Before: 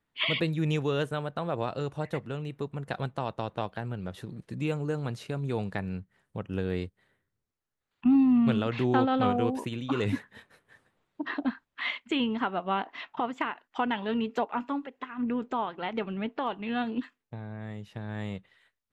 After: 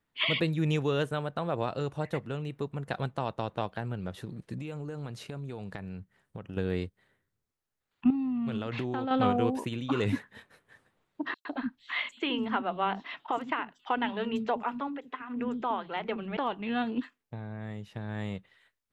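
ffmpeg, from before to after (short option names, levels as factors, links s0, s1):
-filter_complex "[0:a]asettb=1/sr,asplit=3[s0][s1][s2];[s0]atrim=end=4.584[s3];[s1]atrim=start=4.58:end=6.57,asetpts=PTS-STARTPTS,afade=t=in:d=0.004:c=qsin,afade=t=out:st=1.986:d=0.004:c=qsin,acompressor=threshold=0.0178:ratio=6:attack=3.2:release=140:knee=1:detection=peak[s4];[s2]atrim=start=6.566[s5];[s3][s4]acrossfade=d=0.004:c1=hsin:c2=qsin[s6];[s6][s5]acrossfade=d=0.004:c1=qsin:c2=hsin,asettb=1/sr,asplit=3[s7][s8][s9];[s7]atrim=end=8.104[s10];[s8]atrim=start=8.1:end=9.11,asetpts=PTS-STARTPTS,afade=t=in:d=0.004:c=qsin,afade=t=out:st=1.006:d=0.004:c=qsin,acompressor=threshold=0.0398:ratio=12:attack=3.2:release=140:knee=1:detection=peak[s11];[s9]atrim=start=9.106[s12];[s10][s11]acrossfade=d=0.004:c1=hsin:c2=qsin[s13];[s13][s12]acrossfade=d=0.004:c1=qsin:c2=hsin,asettb=1/sr,asplit=3[s14][s15][s16];[s14]atrim=end=11.344[s17];[s15]atrim=start=11.34:end=16.37,asetpts=PTS-STARTPTS,afade=t=in:d=0.004:c=qsin,afade=t=out:st=5.026:d=0.004:c=qsin,acrossover=split=270|5600[s18][s19][s20];[s19]adelay=110[s21];[s18]adelay=180[s22];[s22][s21][s20]amix=inputs=3:normalize=0,atrim=end_sample=221823[s23];[s16]atrim=start=16.366[s24];[s17][s23]acrossfade=d=0.004:c1=hsin:c2=qsin[s25];[s25][s24]acrossfade=d=0.004:c1=qsin:c2=hsin"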